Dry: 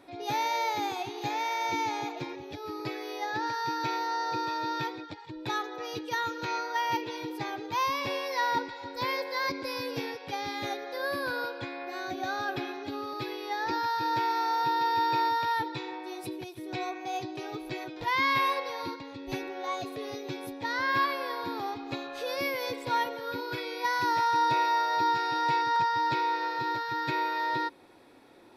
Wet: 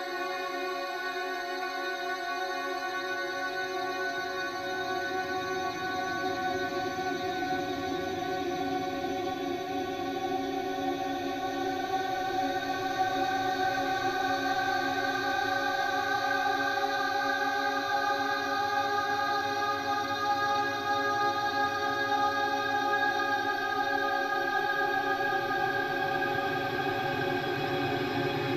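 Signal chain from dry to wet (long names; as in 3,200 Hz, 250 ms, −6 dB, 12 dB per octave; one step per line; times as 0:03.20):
harmonic generator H 6 −28 dB, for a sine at −14.5 dBFS
extreme stretch with random phases 46×, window 0.25 s, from 0:11.95
level +3 dB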